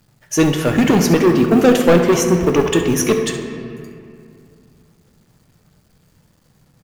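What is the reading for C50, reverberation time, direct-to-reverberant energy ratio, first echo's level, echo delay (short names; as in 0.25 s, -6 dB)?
5.0 dB, 2.4 s, 3.5 dB, -13.0 dB, 68 ms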